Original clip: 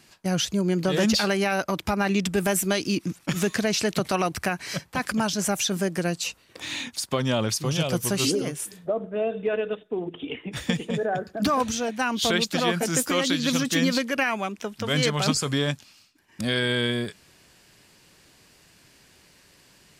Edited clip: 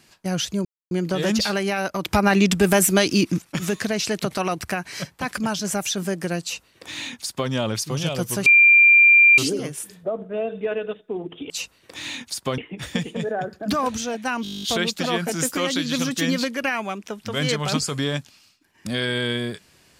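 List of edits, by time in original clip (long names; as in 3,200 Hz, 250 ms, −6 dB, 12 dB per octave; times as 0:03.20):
0:00.65: splice in silence 0.26 s
0:01.79–0:03.16: clip gain +6.5 dB
0:06.16–0:07.24: duplicate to 0:10.32
0:08.20: insert tone 2,380 Hz −9 dBFS 0.92 s
0:12.17: stutter 0.02 s, 11 plays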